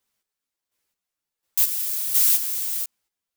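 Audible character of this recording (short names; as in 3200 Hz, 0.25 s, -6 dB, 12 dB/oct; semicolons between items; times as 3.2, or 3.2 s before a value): chopped level 1.4 Hz, depth 65%, duty 30%; a shimmering, thickened sound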